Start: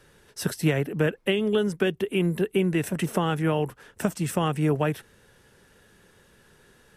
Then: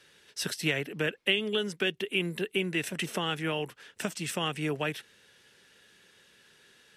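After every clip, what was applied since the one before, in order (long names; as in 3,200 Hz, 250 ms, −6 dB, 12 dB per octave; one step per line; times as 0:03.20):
meter weighting curve D
level −7 dB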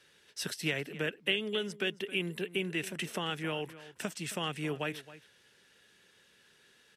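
slap from a distant wall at 46 metres, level −16 dB
level −4 dB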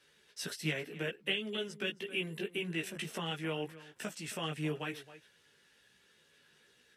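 multi-voice chorus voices 4, 0.57 Hz, delay 16 ms, depth 3.6 ms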